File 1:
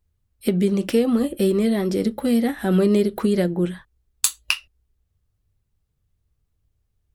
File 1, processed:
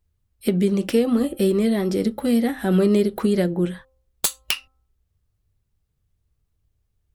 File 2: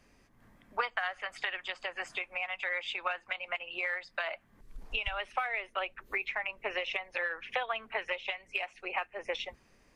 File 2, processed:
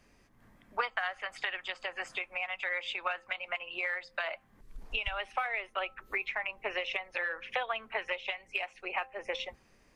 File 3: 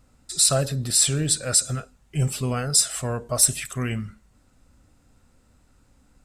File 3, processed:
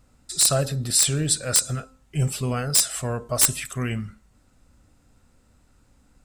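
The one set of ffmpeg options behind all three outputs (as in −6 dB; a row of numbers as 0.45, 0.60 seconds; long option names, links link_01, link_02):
-af "aeval=exprs='(mod(2.37*val(0)+1,2)-1)/2.37':channel_layout=same,bandreject=frequency=262.1:width_type=h:width=4,bandreject=frequency=524.2:width_type=h:width=4,bandreject=frequency=786.3:width_type=h:width=4,bandreject=frequency=1048.4:width_type=h:width=4,bandreject=frequency=1310.5:width_type=h:width=4"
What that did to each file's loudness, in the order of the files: 0.0, 0.0, 0.0 LU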